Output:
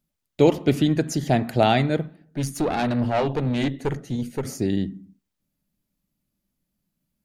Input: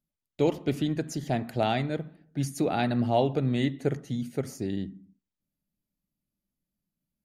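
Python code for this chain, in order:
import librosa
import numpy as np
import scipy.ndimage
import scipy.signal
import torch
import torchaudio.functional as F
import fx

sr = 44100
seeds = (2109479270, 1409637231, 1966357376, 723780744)

y = fx.tube_stage(x, sr, drive_db=25.0, bias=0.65, at=(2.06, 4.45))
y = F.gain(torch.from_numpy(y), 8.0).numpy()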